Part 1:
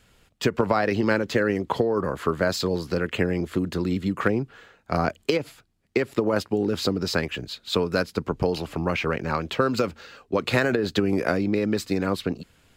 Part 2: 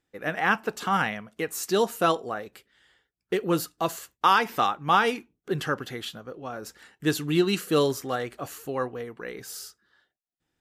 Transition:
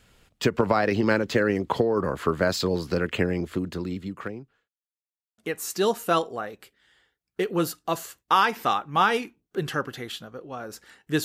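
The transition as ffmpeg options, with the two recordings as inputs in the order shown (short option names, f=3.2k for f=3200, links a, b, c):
-filter_complex "[0:a]apad=whole_dur=11.24,atrim=end=11.24,asplit=2[a][b];[a]atrim=end=4.69,asetpts=PTS-STARTPTS,afade=t=out:st=3.11:d=1.58[c];[b]atrim=start=4.69:end=5.38,asetpts=PTS-STARTPTS,volume=0[d];[1:a]atrim=start=1.31:end=7.17,asetpts=PTS-STARTPTS,afade=t=in:d=0.004:c=hsin[e];[c][d][e]concat=n=3:v=0:a=1"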